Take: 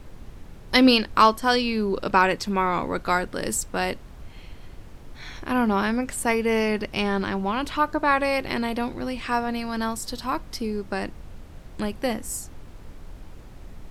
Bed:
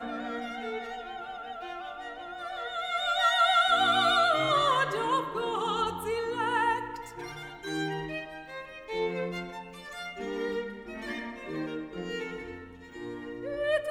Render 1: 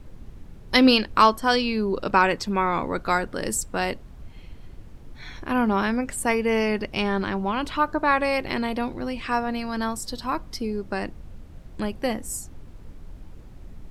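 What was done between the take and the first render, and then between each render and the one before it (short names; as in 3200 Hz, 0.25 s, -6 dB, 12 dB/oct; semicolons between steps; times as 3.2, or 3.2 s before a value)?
denoiser 6 dB, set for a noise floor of -44 dBFS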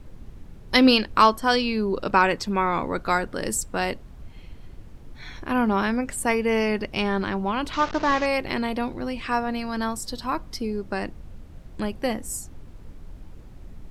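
7.73–8.26 delta modulation 32 kbps, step -28 dBFS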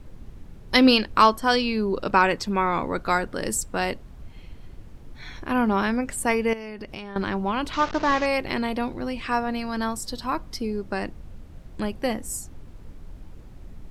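6.53–7.16 compressor 16:1, threshold -31 dBFS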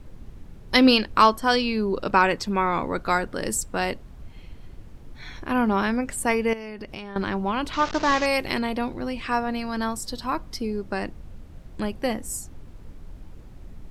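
7.85–8.59 high shelf 4500 Hz +9.5 dB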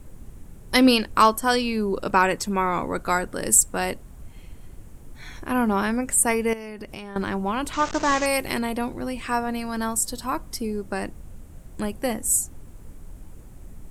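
resonant high shelf 6200 Hz +10 dB, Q 1.5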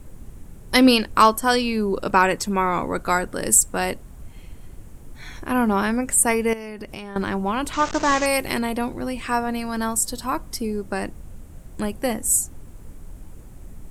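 gain +2 dB; limiter -2 dBFS, peak gain reduction 2 dB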